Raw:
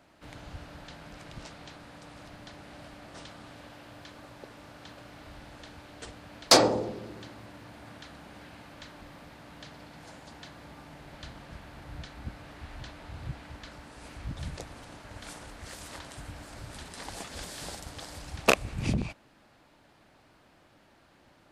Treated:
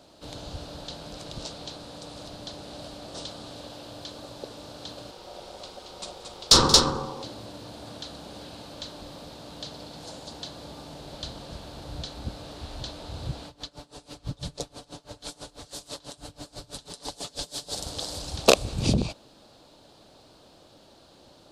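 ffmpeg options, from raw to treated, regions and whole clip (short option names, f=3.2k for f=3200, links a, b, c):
-filter_complex "[0:a]asettb=1/sr,asplit=3[a][b][c];[a]atrim=end=5.114[d];[b]atrim=start=5.11:end=7.24,asetpts=PTS-STARTPTS,afade=t=in:d=0.004:c=qsin,afade=t=out:st=2.126:d=0.004:c=qsin,aeval=exprs='val(0)*sin(2*PI*650*n/s)':c=same,bandreject=f=50:t=h:w=6,bandreject=f=100:t=h:w=6,bandreject=f=150:t=h:w=6,bandreject=f=200:t=h:w=6,bandreject=f=250:t=h:w=6,bandreject=f=300:t=h:w=6,bandreject=f=350:t=h:w=6,bandreject=f=400:t=h:w=6,bandreject=f=450:t=h:w=6,aecho=1:1:179|227:0.1|0.531,atrim=end_sample=93933[e];[c]atrim=start=7.236[f];[d][e]acrossfade=d=0.004:c1=hsin:c2=qsin[g];[g][f]acrossfade=d=0.004:c1=qsin:c2=hsin,asettb=1/sr,asplit=3[h][i][j];[h]atrim=end=13.474[k];[i]atrim=start=13.47:end=17.76,asetpts=PTS-STARTPTS,afade=t=in:d=0.004:c=qsin,afade=t=out:st=4.286:d=0.004:c=qsin,aecho=1:1:6.9:0.49,atrim=end_sample=189189,aeval=exprs='val(0)*pow(10,-23*(0.5-0.5*cos(2*PI*6.1*n/s))/20)':c=same[l];[j]atrim=start=17.756[m];[k][l]acrossfade=d=0.004:c1=hsin:c2=qsin[n];[n][m]acrossfade=d=0.004:c1=qsin:c2=hsin,equalizer=f=500:t=o:w=1:g=6,equalizer=f=2k:t=o:w=1:g=-12,equalizer=f=4k:t=o:w=1:g=11,equalizer=f=8k:t=o:w=1:g=4,alimiter=level_in=5.5dB:limit=-1dB:release=50:level=0:latency=1,volume=-1dB"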